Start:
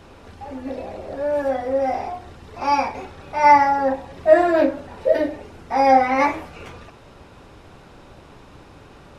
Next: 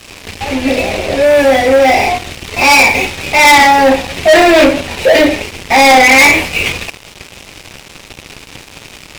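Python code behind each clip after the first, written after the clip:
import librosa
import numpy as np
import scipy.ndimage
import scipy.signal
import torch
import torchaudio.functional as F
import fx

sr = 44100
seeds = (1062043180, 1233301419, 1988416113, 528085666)

y = fx.high_shelf_res(x, sr, hz=1800.0, db=8.5, q=3.0)
y = fx.leveller(y, sr, passes=5)
y = F.gain(torch.from_numpy(y), -1.0).numpy()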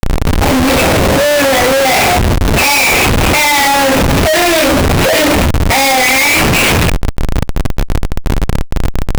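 y = fx.high_shelf(x, sr, hz=3100.0, db=11.5)
y = fx.schmitt(y, sr, flips_db=-12.5)
y = fx.env_flatten(y, sr, amount_pct=50)
y = F.gain(torch.from_numpy(y), -2.0).numpy()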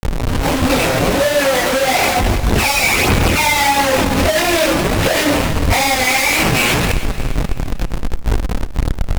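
y = fx.clip_asym(x, sr, top_db=-25.0, bottom_db=-6.5)
y = fx.chorus_voices(y, sr, voices=2, hz=0.79, base_ms=21, depth_ms=4.3, mix_pct=65)
y = fx.echo_feedback(y, sr, ms=308, feedback_pct=43, wet_db=-14.0)
y = F.gain(torch.from_numpy(y), 2.5).numpy()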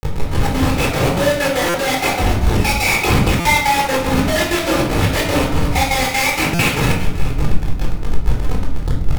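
y = fx.step_gate(x, sr, bpm=193, pattern='x.x.xx.x', floor_db=-12.0, edge_ms=4.5)
y = fx.room_shoebox(y, sr, seeds[0], volume_m3=1000.0, walls='furnished', distance_m=4.1)
y = fx.buffer_glitch(y, sr, at_s=(1.69, 3.4, 6.54), block=256, repeats=8)
y = F.gain(torch.from_numpy(y), -6.0).numpy()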